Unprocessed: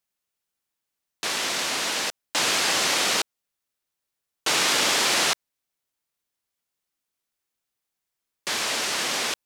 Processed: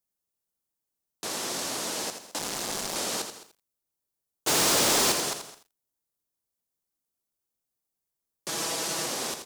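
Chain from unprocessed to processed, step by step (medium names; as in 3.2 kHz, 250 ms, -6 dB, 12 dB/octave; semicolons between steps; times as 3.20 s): 2.38–2.96 s: cycle switcher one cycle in 2, muted; peaking EQ 2.3 kHz -12.5 dB 2.3 oct; 4.47–5.12 s: waveshaping leveller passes 5; 8.48–9.06 s: comb 6.1 ms, depth 89%; peak limiter -21 dBFS, peak gain reduction 5.5 dB; delay 213 ms -17 dB; bit-crushed delay 83 ms, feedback 35%, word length 9-bit, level -7.5 dB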